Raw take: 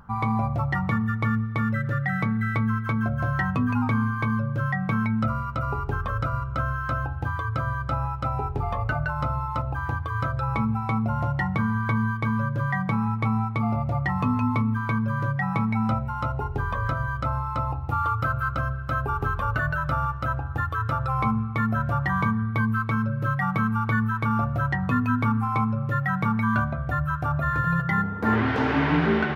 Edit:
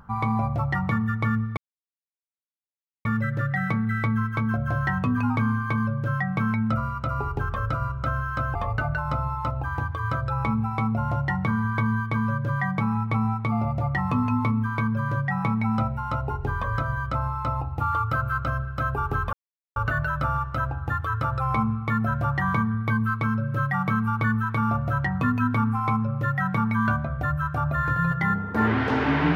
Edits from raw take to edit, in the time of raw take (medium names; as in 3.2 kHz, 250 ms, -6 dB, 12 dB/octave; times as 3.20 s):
1.57 s: insert silence 1.48 s
7.07–8.66 s: delete
19.44 s: insert silence 0.43 s